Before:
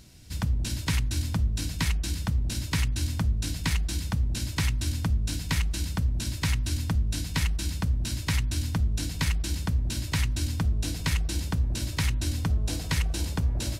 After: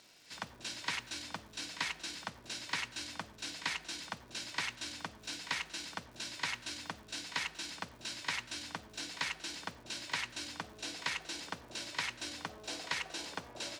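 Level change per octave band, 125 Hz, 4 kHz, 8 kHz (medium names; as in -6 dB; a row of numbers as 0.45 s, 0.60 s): -30.0 dB, -4.0 dB, -8.5 dB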